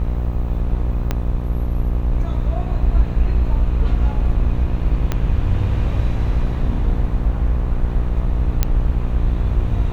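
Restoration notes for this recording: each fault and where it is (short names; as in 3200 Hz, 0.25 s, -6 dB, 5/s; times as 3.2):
buzz 60 Hz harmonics 21 -22 dBFS
1.11 pop -7 dBFS
5.12 pop -7 dBFS
8.63 pop -3 dBFS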